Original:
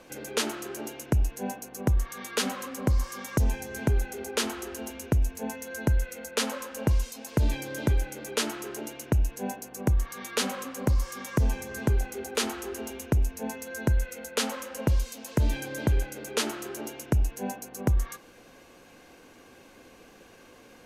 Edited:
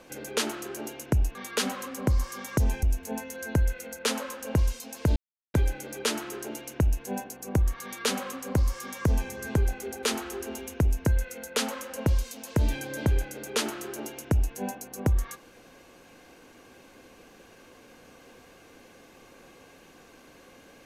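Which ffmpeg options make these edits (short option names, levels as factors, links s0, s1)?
-filter_complex "[0:a]asplit=6[s0][s1][s2][s3][s4][s5];[s0]atrim=end=1.352[s6];[s1]atrim=start=2.148:end=3.632[s7];[s2]atrim=start=5.148:end=7.48,asetpts=PTS-STARTPTS,afade=t=out:st=2.328:d=0.004:c=hsin[s8];[s3]atrim=start=7.48:end=7.86,asetpts=PTS-STARTPTS,volume=0[s9];[s4]atrim=start=7.86:end=13.382,asetpts=PTS-STARTPTS,afade=t=in:d=0.004:c=hsin[s10];[s5]atrim=start=13.868[s11];[s6][s7]acrossfade=d=0.004:c1=hsin:c2=hsin[s12];[s8][s9][s10]concat=n=3:v=0:a=1[s13];[s12][s13]acrossfade=d=0.004:c1=hsin:c2=hsin[s14];[s14][s11]acrossfade=d=0.004:c1=hsin:c2=hsin"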